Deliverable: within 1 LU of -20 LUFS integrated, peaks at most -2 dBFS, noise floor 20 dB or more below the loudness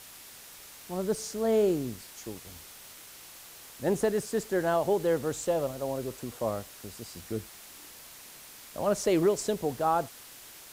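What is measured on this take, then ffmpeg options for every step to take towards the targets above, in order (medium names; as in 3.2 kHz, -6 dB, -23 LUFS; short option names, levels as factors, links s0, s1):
noise floor -49 dBFS; noise floor target -50 dBFS; loudness -29.5 LUFS; peak level -15.5 dBFS; loudness target -20.0 LUFS
-> -af "afftdn=nr=6:nf=-49"
-af "volume=2.99"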